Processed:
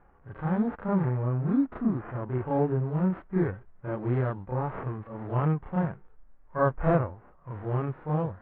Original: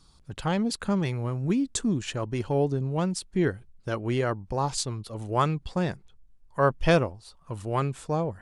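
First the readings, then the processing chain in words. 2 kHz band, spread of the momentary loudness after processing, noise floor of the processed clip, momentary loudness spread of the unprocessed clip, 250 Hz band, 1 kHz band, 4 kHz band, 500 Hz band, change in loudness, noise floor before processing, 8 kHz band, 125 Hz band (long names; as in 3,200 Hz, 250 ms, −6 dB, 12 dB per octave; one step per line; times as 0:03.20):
−6.0 dB, 11 LU, −56 dBFS, 10 LU, 0.0 dB, −3.0 dB, below −25 dB, −2.5 dB, −1.5 dB, −57 dBFS, below −40 dB, +1.0 dB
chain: spectral envelope flattened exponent 0.6
sample-and-hold swept by an LFO 9×, swing 60% 2.1 Hz
backwards echo 32 ms −5.5 dB
harmonic and percussive parts rebalanced percussive −11 dB
low-pass filter 1,600 Hz 24 dB per octave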